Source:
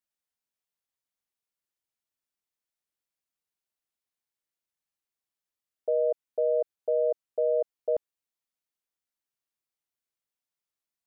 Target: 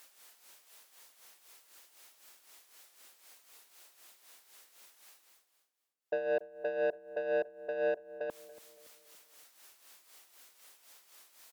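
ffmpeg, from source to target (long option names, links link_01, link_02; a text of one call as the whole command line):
ffmpeg -i in.wav -filter_complex "[0:a]highpass=440,areverse,acompressor=mode=upward:threshold=-36dB:ratio=2.5,areverse,asoftclip=type=tanh:threshold=-29.5dB,tremolo=f=4.1:d=0.65,asplit=2[link_01][link_02];[link_02]adelay=272,lowpass=frequency=810:poles=1,volume=-15dB,asplit=2[link_03][link_04];[link_04]adelay=272,lowpass=frequency=810:poles=1,volume=0.5,asplit=2[link_05][link_06];[link_06]adelay=272,lowpass=frequency=810:poles=1,volume=0.5,asplit=2[link_07][link_08];[link_08]adelay=272,lowpass=frequency=810:poles=1,volume=0.5,asplit=2[link_09][link_10];[link_10]adelay=272,lowpass=frequency=810:poles=1,volume=0.5[link_11];[link_03][link_05][link_07][link_09][link_11]amix=inputs=5:normalize=0[link_12];[link_01][link_12]amix=inputs=2:normalize=0,asetrate=42336,aresample=44100,volume=4dB" out.wav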